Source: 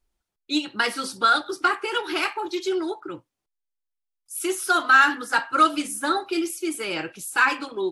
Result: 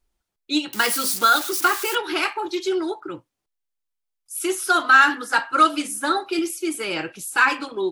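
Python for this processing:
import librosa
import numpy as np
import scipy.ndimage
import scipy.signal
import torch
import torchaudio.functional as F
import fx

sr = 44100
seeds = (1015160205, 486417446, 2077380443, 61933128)

y = fx.crossing_spikes(x, sr, level_db=-20.5, at=(0.73, 1.95))
y = fx.highpass(y, sr, hz=160.0, slope=6, at=(5.14, 6.39))
y = F.gain(torch.from_numpy(y), 2.0).numpy()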